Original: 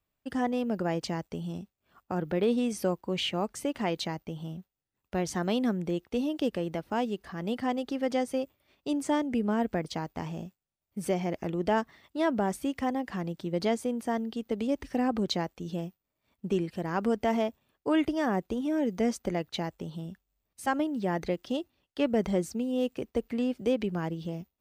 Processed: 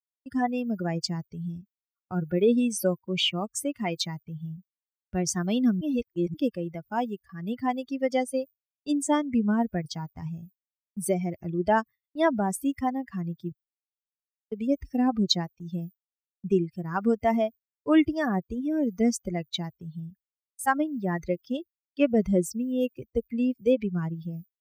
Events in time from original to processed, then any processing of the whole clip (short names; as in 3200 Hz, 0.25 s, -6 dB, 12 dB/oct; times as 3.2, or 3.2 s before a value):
5.81–6.34 reverse
13.52–14.52 room tone
whole clip: per-bin expansion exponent 2; gate with hold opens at -55 dBFS; tone controls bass +1 dB, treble +6 dB; gain +7.5 dB